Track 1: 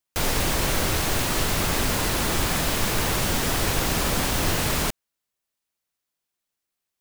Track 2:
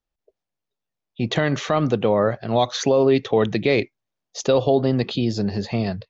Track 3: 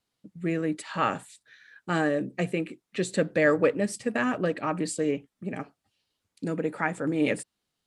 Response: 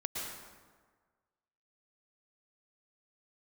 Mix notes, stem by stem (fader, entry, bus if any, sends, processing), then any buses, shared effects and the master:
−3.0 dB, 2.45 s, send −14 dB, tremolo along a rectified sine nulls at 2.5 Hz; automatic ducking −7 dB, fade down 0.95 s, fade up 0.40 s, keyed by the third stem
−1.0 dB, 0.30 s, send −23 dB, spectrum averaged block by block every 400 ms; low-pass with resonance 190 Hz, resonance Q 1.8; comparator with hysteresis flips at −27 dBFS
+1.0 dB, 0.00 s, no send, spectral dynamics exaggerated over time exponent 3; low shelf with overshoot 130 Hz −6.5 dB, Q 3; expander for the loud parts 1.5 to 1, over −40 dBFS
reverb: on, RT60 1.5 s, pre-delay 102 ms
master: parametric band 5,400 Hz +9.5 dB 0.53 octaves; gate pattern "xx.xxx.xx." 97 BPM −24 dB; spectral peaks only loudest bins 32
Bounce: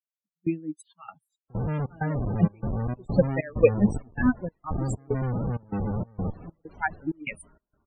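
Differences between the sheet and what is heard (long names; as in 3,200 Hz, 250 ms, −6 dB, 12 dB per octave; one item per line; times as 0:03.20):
stem 1 −3.0 dB → −15.0 dB
stem 3 +1.0 dB → +9.5 dB
master: missing parametric band 5,400 Hz +9.5 dB 0.53 octaves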